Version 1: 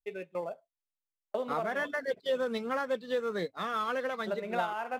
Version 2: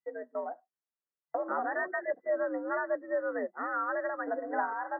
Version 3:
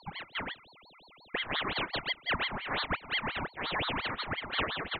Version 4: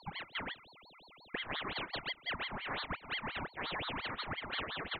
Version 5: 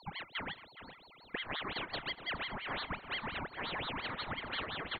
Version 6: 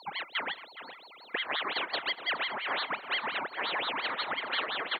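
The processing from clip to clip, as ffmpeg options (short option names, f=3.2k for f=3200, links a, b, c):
-af "afreqshift=80,afftfilt=real='re*between(b*sr/4096,140,2000)':imag='im*between(b*sr/4096,140,2000)':win_size=4096:overlap=0.75"
-af "highpass=f=440:p=1,aeval=exprs='val(0)+0.00178*sin(2*PI*1700*n/s)':c=same,aeval=exprs='val(0)*sin(2*PI*1500*n/s+1500*0.8/5.7*sin(2*PI*5.7*n/s))':c=same,volume=3dB"
-af "acompressor=threshold=-34dB:ratio=6,volume=-1.5dB"
-filter_complex "[0:a]asplit=2[a][b];[b]adelay=417,lowpass=f=1.3k:p=1,volume=-8dB,asplit=2[c][d];[d]adelay=417,lowpass=f=1.3k:p=1,volume=0.21,asplit=2[e][f];[f]adelay=417,lowpass=f=1.3k:p=1,volume=0.21[g];[a][c][e][g]amix=inputs=4:normalize=0"
-af "highpass=420,volume=7.5dB"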